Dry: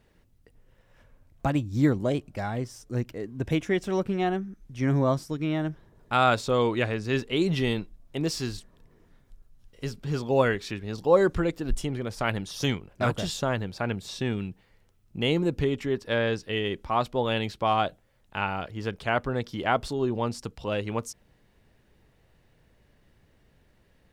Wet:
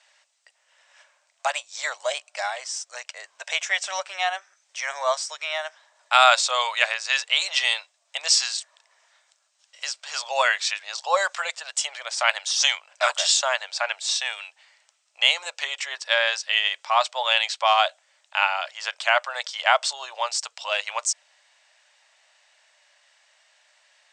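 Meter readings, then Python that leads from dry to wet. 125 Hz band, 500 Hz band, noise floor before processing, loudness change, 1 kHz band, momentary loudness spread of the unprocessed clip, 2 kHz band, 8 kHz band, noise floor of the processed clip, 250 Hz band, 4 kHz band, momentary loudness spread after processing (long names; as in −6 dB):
below −40 dB, −3.5 dB, −64 dBFS, +4.5 dB, +5.5 dB, 10 LU, +9.5 dB, +16.5 dB, −68 dBFS, below −40 dB, +13.0 dB, 11 LU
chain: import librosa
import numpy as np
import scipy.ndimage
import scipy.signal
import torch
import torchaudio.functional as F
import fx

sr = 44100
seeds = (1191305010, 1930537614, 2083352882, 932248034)

y = scipy.signal.sosfilt(scipy.signal.cheby1(5, 1.0, [590.0, 8200.0], 'bandpass', fs=sr, output='sos'), x)
y = fx.tilt_eq(y, sr, slope=4.0)
y = F.gain(torch.from_numpy(y), 6.5).numpy()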